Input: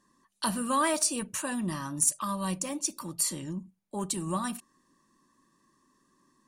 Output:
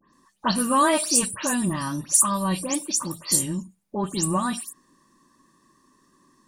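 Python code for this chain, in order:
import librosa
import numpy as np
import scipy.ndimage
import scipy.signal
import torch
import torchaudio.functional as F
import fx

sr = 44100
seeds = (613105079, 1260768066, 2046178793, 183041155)

y = fx.spec_delay(x, sr, highs='late', ms=130)
y = y * librosa.db_to_amplitude(7.5)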